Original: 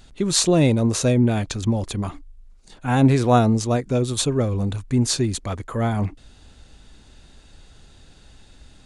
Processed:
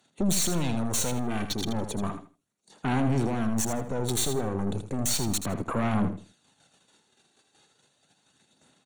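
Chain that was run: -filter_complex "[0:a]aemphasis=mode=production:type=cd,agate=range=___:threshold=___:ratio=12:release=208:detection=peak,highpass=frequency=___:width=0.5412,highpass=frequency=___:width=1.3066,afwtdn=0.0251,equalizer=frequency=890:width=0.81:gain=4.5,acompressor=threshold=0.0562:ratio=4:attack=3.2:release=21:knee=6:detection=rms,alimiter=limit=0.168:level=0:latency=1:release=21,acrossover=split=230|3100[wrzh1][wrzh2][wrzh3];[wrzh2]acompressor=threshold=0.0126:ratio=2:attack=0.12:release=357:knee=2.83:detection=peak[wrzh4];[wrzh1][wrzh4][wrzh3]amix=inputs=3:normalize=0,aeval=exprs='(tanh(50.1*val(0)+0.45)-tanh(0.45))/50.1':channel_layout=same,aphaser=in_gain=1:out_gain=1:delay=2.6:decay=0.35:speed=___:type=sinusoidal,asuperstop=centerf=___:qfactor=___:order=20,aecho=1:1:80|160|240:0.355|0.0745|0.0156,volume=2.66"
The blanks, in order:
0.355, 0.00562, 150, 150, 0.34, 5000, 7.9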